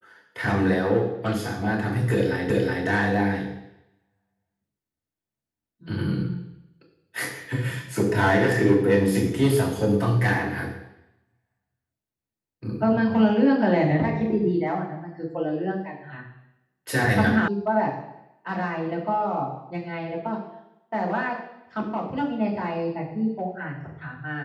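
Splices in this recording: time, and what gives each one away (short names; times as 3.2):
2.5 repeat of the last 0.37 s
17.48 sound cut off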